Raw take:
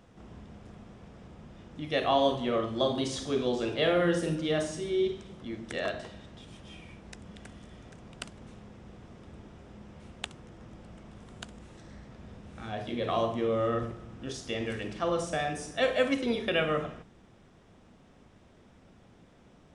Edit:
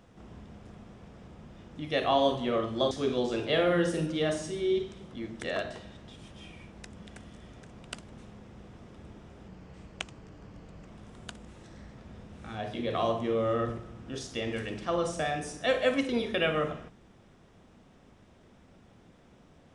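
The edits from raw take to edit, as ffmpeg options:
-filter_complex "[0:a]asplit=4[a][b][c][d];[a]atrim=end=2.912[e];[b]atrim=start=3.198:end=9.774[f];[c]atrim=start=9.77:end=11.01,asetpts=PTS-STARTPTS,asetrate=39249,aresample=44100[g];[d]atrim=start=11.006[h];[e][f]acrossfade=d=0.004:c1=hsin:c2=hsin[i];[i][g]acrossfade=d=0.004:c1=hsin:c2=hsin[j];[j][h]acrossfade=d=0.004:c1=hsin:c2=hsin"

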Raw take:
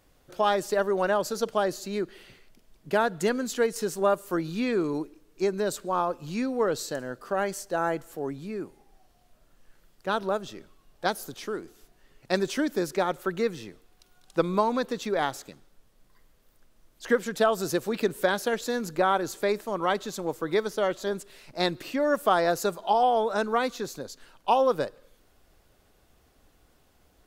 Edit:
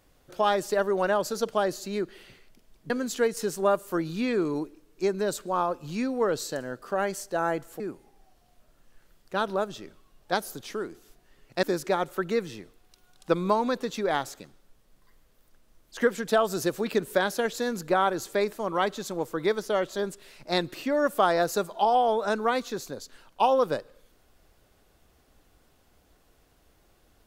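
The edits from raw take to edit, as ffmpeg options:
-filter_complex "[0:a]asplit=4[a][b][c][d];[a]atrim=end=2.902[e];[b]atrim=start=3.288:end=8.192[f];[c]atrim=start=8.528:end=12.362[g];[d]atrim=start=12.708[h];[e][f]acrossfade=d=0.004:c1=hsin:c2=hsin[i];[i][g]acrossfade=d=0.004:c1=hsin:c2=hsin[j];[j][h]acrossfade=d=0.004:c1=hsin:c2=hsin"

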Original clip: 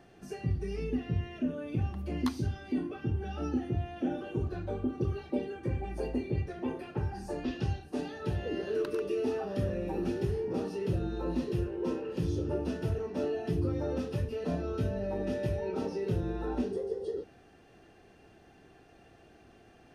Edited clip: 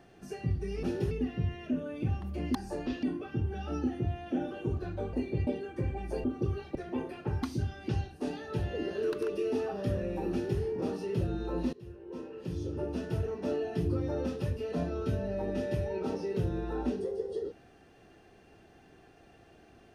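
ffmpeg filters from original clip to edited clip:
-filter_complex "[0:a]asplit=12[a][b][c][d][e][f][g][h][i][j][k][l];[a]atrim=end=0.832[m];[b]atrim=start=10.038:end=10.322[n];[c]atrim=start=0.828:end=2.272[o];[d]atrim=start=7.128:end=7.612[p];[e]atrim=start=2.728:end=4.832[q];[f]atrim=start=6.108:end=6.452[r];[g]atrim=start=5.338:end=6.112[s];[h]atrim=start=4.828:end=5.342[t];[i]atrim=start=6.448:end=7.132[u];[j]atrim=start=2.268:end=2.732[v];[k]atrim=start=7.608:end=11.45,asetpts=PTS-STARTPTS,afade=t=out:st=3.838:d=0.004:c=hsin:silence=0.0944061[w];[l]atrim=start=11.45,asetpts=PTS-STARTPTS,afade=t=in:d=1.51:silence=0.0944061[x];[m][n]acrossfade=d=0.004:c1=hsin:c2=hsin[y];[y][o]acrossfade=d=0.004:c1=hsin:c2=hsin[z];[z][p]acrossfade=d=0.004:c1=hsin:c2=hsin[aa];[aa][q]acrossfade=d=0.004:c1=hsin:c2=hsin[ab];[ab][r]acrossfade=d=0.004:c1=hsin:c2=hsin[ac];[ac][s]acrossfade=d=0.004:c1=hsin:c2=hsin[ad];[ad][t]acrossfade=d=0.004:c1=hsin:c2=hsin[ae];[ae][u]acrossfade=d=0.004:c1=hsin:c2=hsin[af];[af][v]acrossfade=d=0.004:c1=hsin:c2=hsin[ag];[w][x]concat=n=2:v=0:a=1[ah];[ag][ah]acrossfade=d=0.004:c1=hsin:c2=hsin"

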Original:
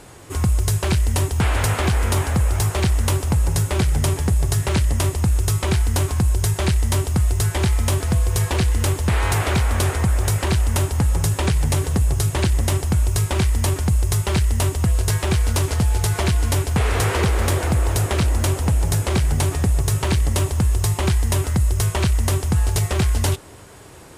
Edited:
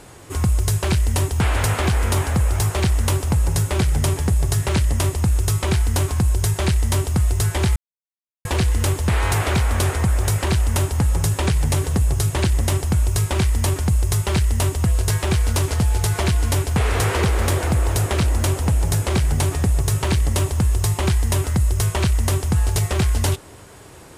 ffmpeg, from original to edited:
-filter_complex "[0:a]asplit=3[a][b][c];[a]atrim=end=7.76,asetpts=PTS-STARTPTS,afade=t=out:st=7.756:d=0.004:c=hsin[d];[b]atrim=start=7.76:end=8.45,asetpts=PTS-STARTPTS,volume=0[e];[c]atrim=start=8.45,asetpts=PTS-STARTPTS,afade=t=in:d=0.004:c=hsin[f];[d][e][f]concat=n=3:v=0:a=1"

